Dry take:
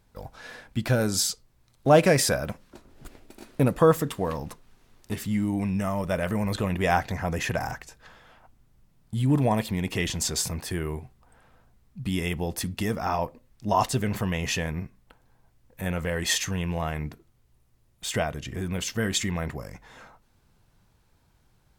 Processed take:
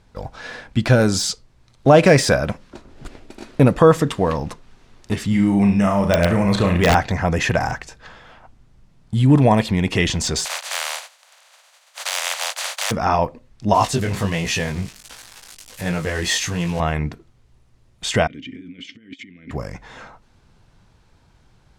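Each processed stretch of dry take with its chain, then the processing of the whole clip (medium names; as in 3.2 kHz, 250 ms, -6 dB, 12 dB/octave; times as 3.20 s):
5.29–6.95 s: flutter echo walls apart 6 m, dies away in 0.38 s + integer overflow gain 14 dB
10.44–12.90 s: spectral contrast reduction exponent 0.11 + steep high-pass 530 Hz 72 dB/octave + band-stop 5.3 kHz, Q 16
13.74–16.80 s: zero-crossing glitches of -26.5 dBFS + chorus 1.4 Hz, delay 17.5 ms, depth 4.1 ms
18.27–19.51 s: compressor with a negative ratio -33 dBFS, ratio -0.5 + vowel filter i
whole clip: low-pass 6.9 kHz 12 dB/octave; de-esser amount 55%; loudness maximiser +10 dB; trim -1 dB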